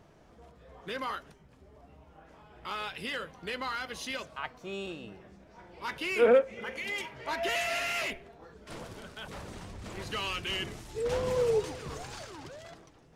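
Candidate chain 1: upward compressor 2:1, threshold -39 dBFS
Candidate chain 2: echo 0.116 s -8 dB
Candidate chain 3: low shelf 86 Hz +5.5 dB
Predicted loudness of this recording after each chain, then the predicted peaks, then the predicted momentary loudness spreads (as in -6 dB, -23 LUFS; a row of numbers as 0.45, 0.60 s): -33.0, -32.0, -32.5 LUFS; -13.0, -11.5, -12.5 dBFS; 21, 18, 18 LU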